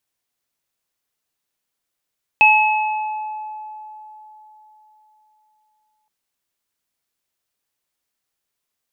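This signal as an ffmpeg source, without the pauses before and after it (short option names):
-f lavfi -i "aevalsrc='0.251*pow(10,-3*t/3.93)*sin(2*PI*858*t)+0.422*pow(10,-3*t/1.39)*sin(2*PI*2580*t)':d=3.67:s=44100"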